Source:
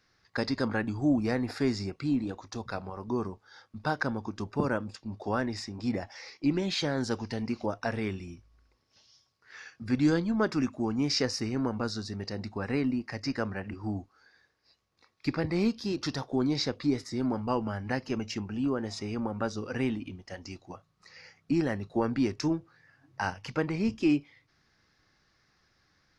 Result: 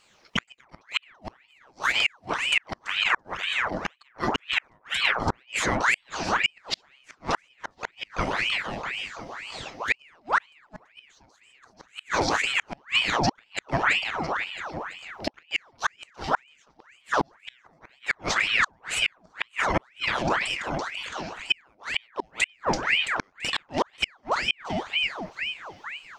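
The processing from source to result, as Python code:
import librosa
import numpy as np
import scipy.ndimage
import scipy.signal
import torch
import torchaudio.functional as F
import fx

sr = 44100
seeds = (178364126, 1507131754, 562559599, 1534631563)

p1 = 10.0 ** (-22.0 / 20.0) * np.tanh(x / 10.0 ** (-22.0 / 20.0))
p2 = x + F.gain(torch.from_numpy(p1), -5.0).numpy()
p3 = fx.echo_split(p2, sr, split_hz=430.0, low_ms=453, high_ms=334, feedback_pct=52, wet_db=-4.5)
p4 = fx.gate_flip(p3, sr, shuts_db=-17.0, range_db=-39)
p5 = fx.ring_lfo(p4, sr, carrier_hz=1600.0, swing_pct=75, hz=2.0)
y = F.gain(torch.from_numpy(p5), 8.0).numpy()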